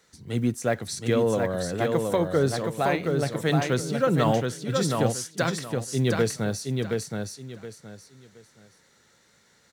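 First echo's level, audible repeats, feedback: -4.0 dB, 3, 25%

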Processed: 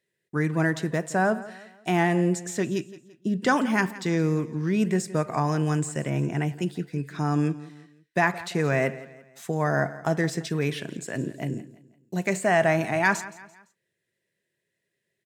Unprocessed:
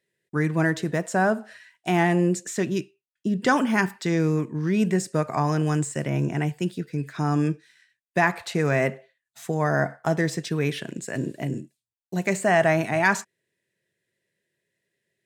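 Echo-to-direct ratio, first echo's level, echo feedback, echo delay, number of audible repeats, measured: -16.5 dB, -17.5 dB, 41%, 0.17 s, 3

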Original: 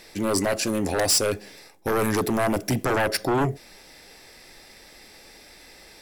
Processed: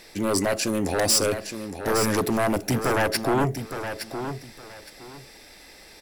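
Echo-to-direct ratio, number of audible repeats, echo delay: -9.0 dB, 2, 0.865 s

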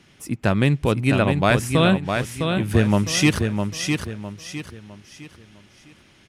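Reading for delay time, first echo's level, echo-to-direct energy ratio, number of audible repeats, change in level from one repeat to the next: 0.657 s, -5.5 dB, -5.0 dB, 4, -9.0 dB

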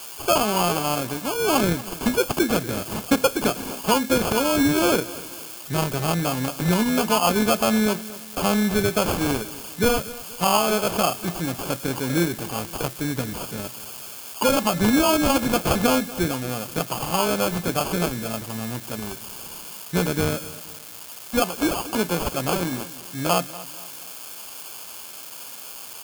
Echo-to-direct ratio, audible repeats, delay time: -17.5 dB, 3, 0.238 s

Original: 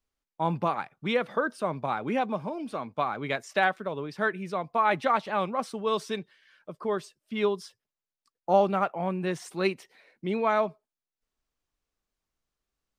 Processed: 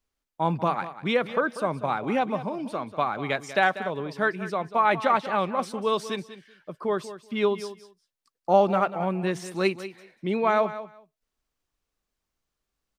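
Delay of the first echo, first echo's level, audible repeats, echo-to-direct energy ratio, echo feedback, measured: 0.191 s, -13.5 dB, 2, -13.5 dB, 16%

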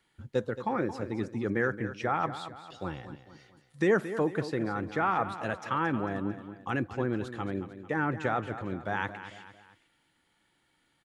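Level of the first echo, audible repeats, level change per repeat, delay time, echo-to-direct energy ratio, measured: -12.0 dB, 3, -7.0 dB, 0.224 s, -11.0 dB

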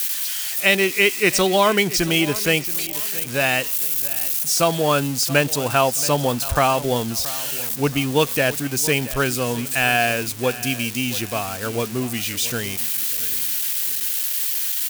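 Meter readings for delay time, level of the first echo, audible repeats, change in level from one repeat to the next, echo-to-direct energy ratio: 0.676 s, -17.0 dB, 3, -8.0 dB, -16.5 dB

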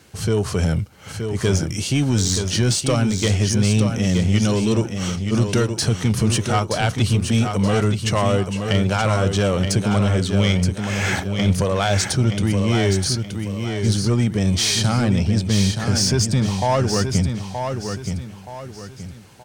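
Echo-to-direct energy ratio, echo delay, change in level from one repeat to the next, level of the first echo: -6.0 dB, 0.924 s, -9.0 dB, -6.5 dB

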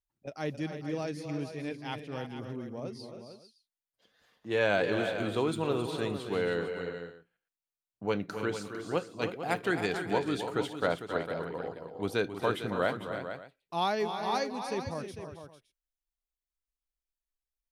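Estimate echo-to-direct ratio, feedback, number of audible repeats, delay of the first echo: -5.5 dB, no steady repeat, 4, 0.269 s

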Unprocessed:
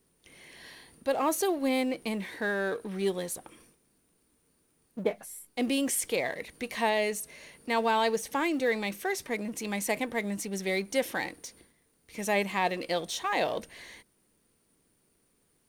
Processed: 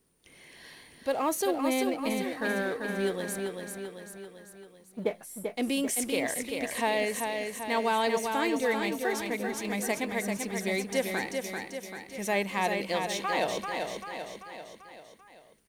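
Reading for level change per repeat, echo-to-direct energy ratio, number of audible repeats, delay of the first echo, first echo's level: -5.0 dB, -3.5 dB, 5, 0.39 s, -5.0 dB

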